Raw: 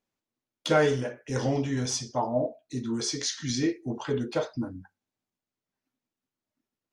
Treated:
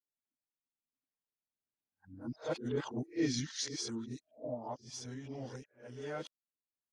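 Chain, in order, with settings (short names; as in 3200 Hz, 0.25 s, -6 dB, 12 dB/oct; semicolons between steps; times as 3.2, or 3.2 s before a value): whole clip reversed; Doppler pass-by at 3.11, 5 m/s, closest 3.1 m; gain -5.5 dB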